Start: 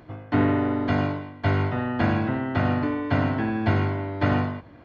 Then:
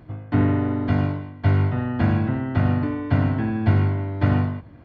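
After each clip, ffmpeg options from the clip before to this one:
-af "bass=f=250:g=9,treble=f=4k:g=-3,volume=-3dB"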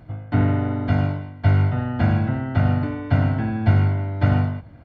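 -af "aecho=1:1:1.4:0.35"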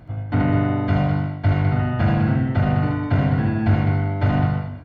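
-filter_complex "[0:a]asoftclip=type=tanh:threshold=-12dB,asplit=2[a][b];[b]aecho=0:1:75.8|204.1:0.708|0.447[c];[a][c]amix=inputs=2:normalize=0,volume=1.5dB"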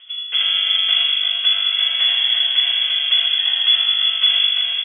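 -af "lowpass=f=3k:t=q:w=0.5098,lowpass=f=3k:t=q:w=0.6013,lowpass=f=3k:t=q:w=0.9,lowpass=f=3k:t=q:w=2.563,afreqshift=-3500,aecho=1:1:345:0.668"

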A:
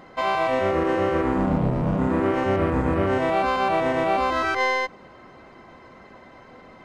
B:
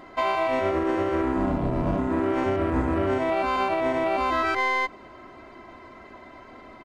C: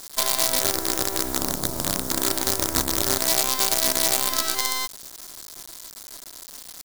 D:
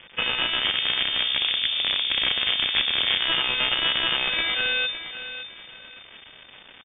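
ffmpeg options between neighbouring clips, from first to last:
-af "aecho=1:1:3:0.5,alimiter=limit=-15dB:level=0:latency=1:release=215"
-af "acrusher=bits=4:dc=4:mix=0:aa=0.000001,aexciter=amount=3.4:drive=9.7:freq=3.8k,volume=-3.5dB"
-filter_complex "[0:a]asplit=2[a][b];[b]aecho=0:1:563|1126|1689:0.266|0.0692|0.018[c];[a][c]amix=inputs=2:normalize=0,lowpass=f=3.1k:t=q:w=0.5098,lowpass=f=3.1k:t=q:w=0.6013,lowpass=f=3.1k:t=q:w=0.9,lowpass=f=3.1k:t=q:w=2.563,afreqshift=-3600,volume=4dB"

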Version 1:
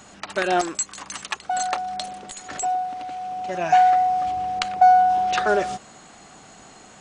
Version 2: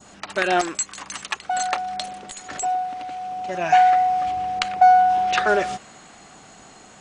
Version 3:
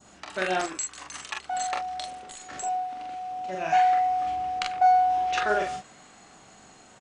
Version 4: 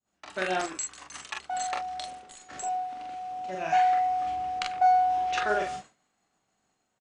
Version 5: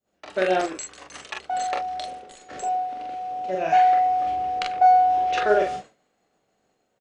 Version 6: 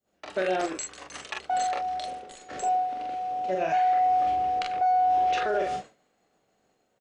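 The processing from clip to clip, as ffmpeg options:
-af "adynamicequalizer=threshold=0.02:dfrequency=2200:dqfactor=0.99:tfrequency=2200:tqfactor=0.99:attack=5:release=100:ratio=0.375:range=2.5:mode=boostabove:tftype=bell"
-af "aecho=1:1:27|43:0.376|0.708,volume=-8dB"
-af "agate=range=-33dB:threshold=-38dB:ratio=3:detection=peak,volume=-2dB"
-af "equalizer=f=500:t=o:w=1:g=10,equalizer=f=1k:t=o:w=1:g=-4,equalizer=f=8k:t=o:w=1:g=-6,volume=3.5dB"
-af "alimiter=limit=-18dB:level=0:latency=1:release=90"

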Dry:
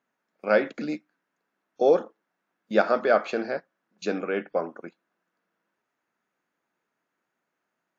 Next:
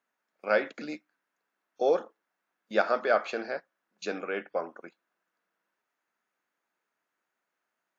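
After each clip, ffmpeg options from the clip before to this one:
-af "lowshelf=f=340:g=-11.5,volume=-1.5dB"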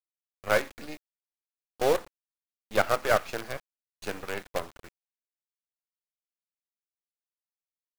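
-af "acrusher=bits=5:dc=4:mix=0:aa=0.000001,aeval=exprs='0.299*(cos(1*acos(clip(val(0)/0.299,-1,1)))-cos(1*PI/2))+0.119*(cos(2*acos(clip(val(0)/0.299,-1,1)))-cos(2*PI/2))':c=same"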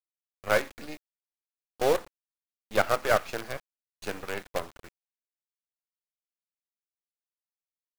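-af anull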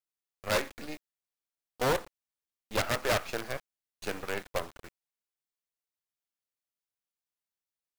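-af "aeval=exprs='0.0891*(abs(mod(val(0)/0.0891+3,4)-2)-1)':c=same"

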